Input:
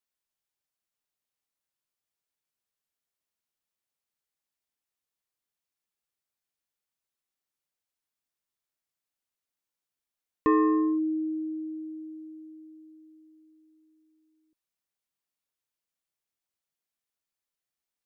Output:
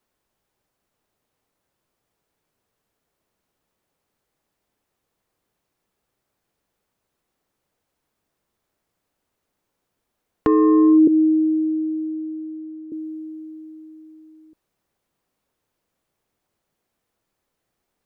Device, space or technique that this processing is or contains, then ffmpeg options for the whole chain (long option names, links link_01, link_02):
mastering chain: -filter_complex "[0:a]asettb=1/sr,asplit=3[link_01][link_02][link_03];[link_01]atrim=end=11.074[link_04];[link_02]atrim=start=11.07:end=12.92,asetpts=PTS-STARTPTS,afade=type=in:duration=0.004:curve=qsin,afade=type=out:start_time=1.846:duration=0.004:curve=qsin,acrossover=split=370 2200:gain=0.0794 1 0.141[link_05][link_06][link_07];[link_05][link_06][link_07]amix=inputs=3:normalize=0[link_08];[link_03]atrim=start=12.916[link_09];[link_04][link_08]acrossfade=duration=0.004:curve1=hsin:curve2=qsin[link_10];[link_10][link_09]acrossfade=duration=0.004:curve1=qsin:curve2=hsin,equalizer=frequency=430:width_type=o:width=0.77:gain=1.5,acrossover=split=320|1200[link_11][link_12][link_13];[link_11]acompressor=threshold=-36dB:ratio=4[link_14];[link_12]acompressor=threshold=-26dB:ratio=4[link_15];[link_13]acompressor=threshold=-46dB:ratio=4[link_16];[link_14][link_15][link_16]amix=inputs=3:normalize=0,acompressor=threshold=-30dB:ratio=3,tiltshelf=frequency=1500:gain=7.5,asoftclip=type=hard:threshold=-16dB,alimiter=level_in=22.5dB:limit=-1dB:release=50:level=0:latency=1,volume=-7.5dB"